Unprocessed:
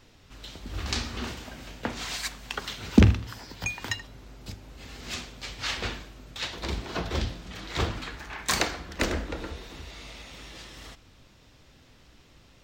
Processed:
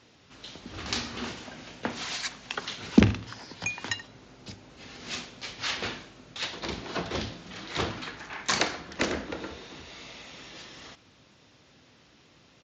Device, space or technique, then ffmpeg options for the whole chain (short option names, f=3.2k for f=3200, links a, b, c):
Bluetooth headset: -af "highpass=130,aresample=16000,aresample=44100" -ar 16000 -c:a sbc -b:a 64k